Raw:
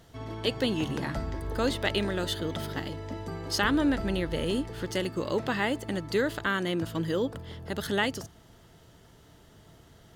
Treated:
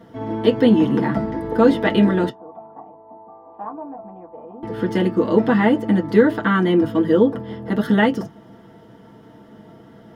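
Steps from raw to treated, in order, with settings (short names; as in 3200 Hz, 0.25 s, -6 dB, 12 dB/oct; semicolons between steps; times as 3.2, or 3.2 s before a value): 2.29–4.63 vocal tract filter a; reverb, pre-delay 3 ms, DRR -2 dB; gain -5.5 dB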